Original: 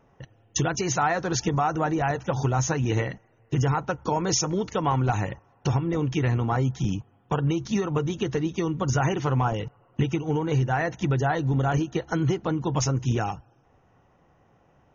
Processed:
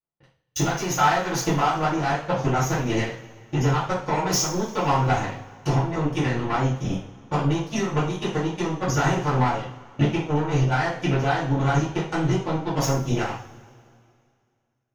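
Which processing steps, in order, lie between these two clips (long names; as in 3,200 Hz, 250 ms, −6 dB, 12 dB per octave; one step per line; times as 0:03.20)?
power curve on the samples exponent 2
coupled-rooms reverb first 0.43 s, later 2.3 s, from −21 dB, DRR −9.5 dB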